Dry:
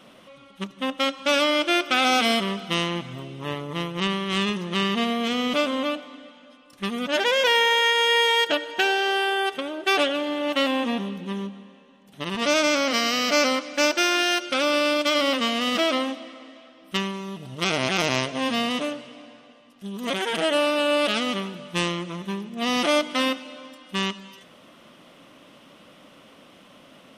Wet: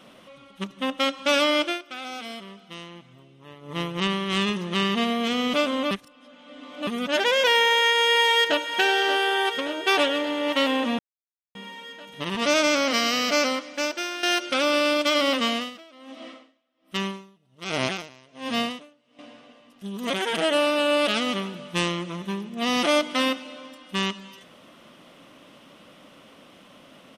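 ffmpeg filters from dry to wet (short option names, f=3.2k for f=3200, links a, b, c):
-filter_complex "[0:a]asplit=2[a][b];[b]afade=t=in:st=7.56:d=0.01,afade=t=out:st=8.64:d=0.01,aecho=0:1:580|1160|1740|2320|2900|3480|4060|4640|5220|5800|6380|6960:0.298538|0.223904|0.167928|0.125946|0.0944594|0.0708445|0.0531334|0.03985|0.0298875|0.0224157|0.0168117|0.0126088[c];[a][c]amix=inputs=2:normalize=0,asettb=1/sr,asplit=3[d][e][f];[d]atrim=end=15.514[g];[e]atrim=start=15.51:end=19.19,asetpts=PTS-STARTPTS,afade=t=in:d=0.004:c=qsin,afade=t=out:st=3.676:d=0.004:c=qsin,aeval=exprs='val(0)*pow(10,-28*(0.5-0.5*cos(2*PI*1.3*n/s))/20)':c=same[h];[f]atrim=start=19.186[i];[g][h]acrossfade=d=0.004:c1=hsin:c2=qsin[j];[j][i]acrossfade=d=0.004:c1=qsin:c2=hsin,asplit=8[k][l][m][n][o][p][q][r];[k]atrim=end=1.79,asetpts=PTS-STARTPTS,afade=t=out:st=1.61:d=0.18:silence=0.16788[s];[l]atrim=start=1.79:end=3.61,asetpts=PTS-STARTPTS,volume=-15.5dB[t];[m]atrim=start=3.61:end=5.912,asetpts=PTS-STARTPTS,afade=t=in:d=0.18:silence=0.16788[u];[n]atrim=start=5.908:end=6.872,asetpts=PTS-STARTPTS,areverse[v];[o]atrim=start=6.868:end=10.99,asetpts=PTS-STARTPTS,afade=t=out:st=4.118:d=0.004:c=hsin[w];[p]atrim=start=10.99:end=11.55,asetpts=PTS-STARTPTS,volume=0[x];[q]atrim=start=11.55:end=14.23,asetpts=PTS-STARTPTS,afade=t=in:d=0.004:c=hsin,afade=t=out:st=1.56:d=1.12:silence=0.237137[y];[r]atrim=start=14.23,asetpts=PTS-STARTPTS,afade=t=in:d=0.004:c=hsin:silence=0.237137[z];[s][t][u]concat=n=3:v=0:a=1[aa];[aa][v]acrossfade=d=0.004:c1=hsin:c2=hsin[ab];[w][x][y][z]concat=n=4:v=0:a=1[ac];[ab][ac]acrossfade=d=0.004:c1=hsin:c2=hsin"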